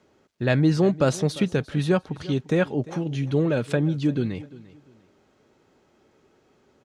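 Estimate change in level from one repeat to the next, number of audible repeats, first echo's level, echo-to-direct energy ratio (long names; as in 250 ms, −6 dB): −11.0 dB, 2, −19.0 dB, −18.5 dB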